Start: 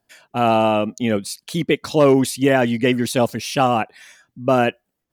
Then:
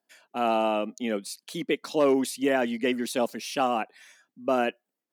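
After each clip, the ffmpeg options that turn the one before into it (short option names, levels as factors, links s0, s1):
-af "highpass=f=210:w=0.5412,highpass=f=210:w=1.3066,volume=0.398"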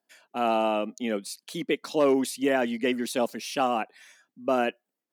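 -af anull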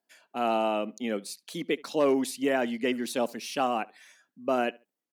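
-filter_complex "[0:a]asplit=2[s0][s1];[s1]adelay=71,lowpass=f=3200:p=1,volume=0.0668,asplit=2[s2][s3];[s3]adelay=71,lowpass=f=3200:p=1,volume=0.25[s4];[s0][s2][s4]amix=inputs=3:normalize=0,volume=0.794"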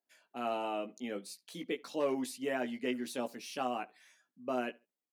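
-filter_complex "[0:a]asplit=2[s0][s1];[s1]adelay=16,volume=0.501[s2];[s0][s2]amix=inputs=2:normalize=0,volume=0.355"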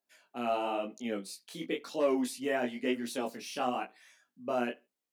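-af "flanger=delay=17.5:depth=7.6:speed=0.98,volume=2"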